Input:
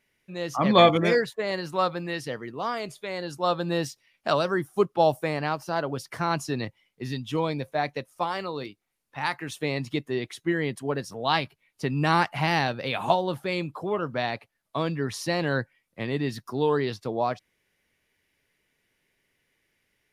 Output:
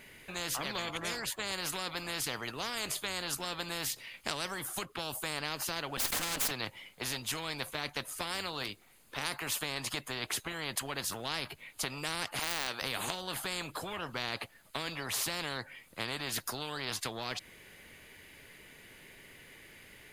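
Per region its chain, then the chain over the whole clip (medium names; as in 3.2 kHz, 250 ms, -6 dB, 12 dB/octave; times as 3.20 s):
5.97–6.51 s: comb filter that takes the minimum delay 3.8 ms + swell ahead of each attack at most 22 dB/s
12.39–12.82 s: high-pass 750 Hz + de-esser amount 85%
whole clip: band-stop 5.6 kHz, Q 6.4; compression 4:1, threshold -29 dBFS; spectrum-flattening compressor 4:1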